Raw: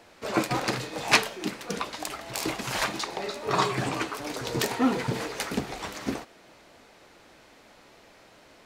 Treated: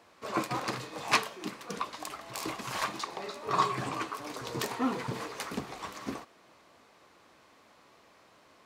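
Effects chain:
high-pass filter 66 Hz
parametric band 1,100 Hz +9.5 dB 0.27 octaves
level −7 dB

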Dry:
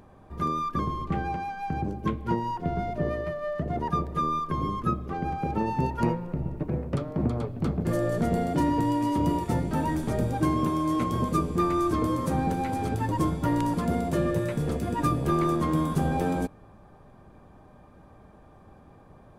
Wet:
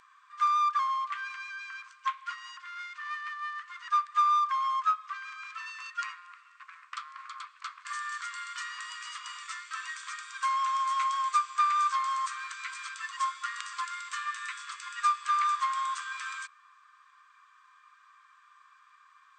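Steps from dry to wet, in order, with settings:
in parallel at −7 dB: asymmetric clip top −29.5 dBFS
on the sum: linear-phase brick-wall band-pass 1,000–8,700 Hz
level +1.5 dB

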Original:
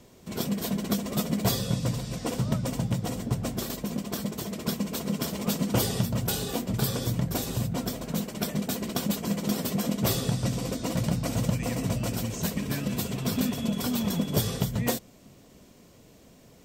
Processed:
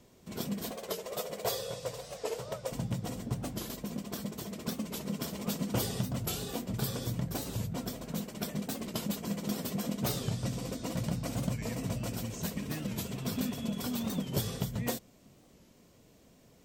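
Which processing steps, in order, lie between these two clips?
0:00.71–0:02.72: low shelf with overshoot 350 Hz −11 dB, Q 3
wow of a warped record 45 rpm, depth 160 cents
level −6.5 dB

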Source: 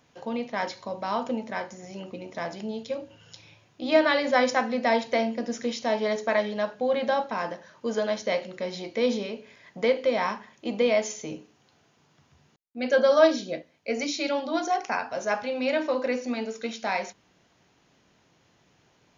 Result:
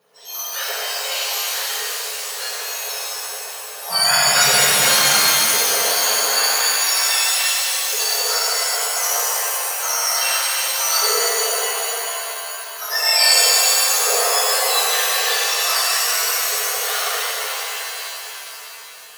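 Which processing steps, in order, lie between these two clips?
frequency axis turned over on the octave scale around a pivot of 1,700 Hz
0:03.89–0:04.85: noise in a band 120–200 Hz −48 dBFS
reverb with rising layers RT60 3.7 s, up +7 semitones, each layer −2 dB, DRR −9 dB
level +1.5 dB

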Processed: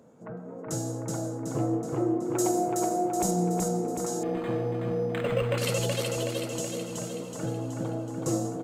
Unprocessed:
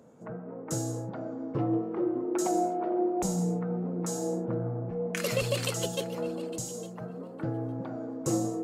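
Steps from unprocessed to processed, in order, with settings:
0:02.00–0:03.31: high-shelf EQ 8,100 Hz +11 dB
repeating echo 374 ms, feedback 57%, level −3 dB
0:04.23–0:05.58: linearly interpolated sample-rate reduction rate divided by 8×

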